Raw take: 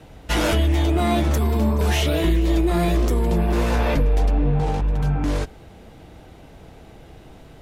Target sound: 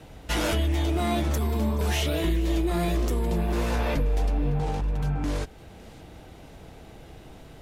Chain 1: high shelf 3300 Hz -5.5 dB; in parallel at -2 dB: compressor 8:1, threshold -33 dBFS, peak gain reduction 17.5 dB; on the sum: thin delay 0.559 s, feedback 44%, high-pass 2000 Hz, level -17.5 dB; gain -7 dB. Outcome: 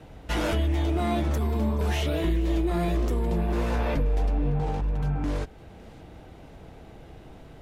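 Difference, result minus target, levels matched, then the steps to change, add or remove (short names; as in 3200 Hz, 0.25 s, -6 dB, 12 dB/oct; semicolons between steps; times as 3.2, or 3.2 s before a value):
8000 Hz band -7.0 dB
change: high shelf 3300 Hz +3 dB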